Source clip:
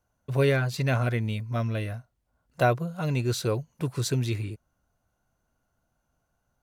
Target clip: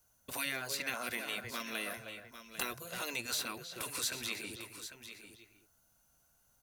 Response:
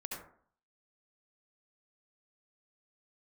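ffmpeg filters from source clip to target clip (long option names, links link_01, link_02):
-filter_complex "[0:a]asplit=2[link_01][link_02];[link_02]adelay=310,highpass=300,lowpass=3400,asoftclip=type=hard:threshold=-19dB,volume=-13dB[link_03];[link_01][link_03]amix=inputs=2:normalize=0,acrossover=split=460|1100|2700[link_04][link_05][link_06][link_07];[link_04]acompressor=threshold=-38dB:ratio=4[link_08];[link_05]acompressor=threshold=-41dB:ratio=4[link_09];[link_06]acompressor=threshold=-41dB:ratio=4[link_10];[link_07]acompressor=threshold=-51dB:ratio=4[link_11];[link_08][link_09][link_10][link_11]amix=inputs=4:normalize=0,afftfilt=real='re*lt(hypot(re,im),0.0794)':imag='im*lt(hypot(re,im),0.0794)':win_size=1024:overlap=0.75,asplit=2[link_12][link_13];[link_13]aecho=0:1:798:0.282[link_14];[link_12][link_14]amix=inputs=2:normalize=0,crystalizer=i=6:c=0,volume=-3.5dB"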